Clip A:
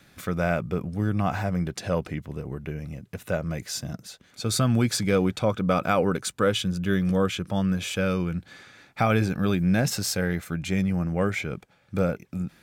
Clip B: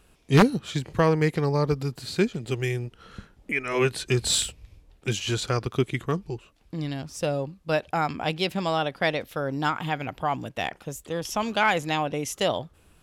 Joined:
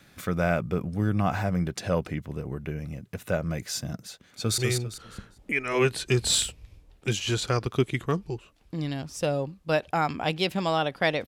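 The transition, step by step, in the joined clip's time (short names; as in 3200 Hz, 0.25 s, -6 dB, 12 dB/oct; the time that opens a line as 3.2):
clip A
4.21–4.58 echo throw 0.2 s, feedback 30%, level -4 dB
4.58 switch to clip B from 2.58 s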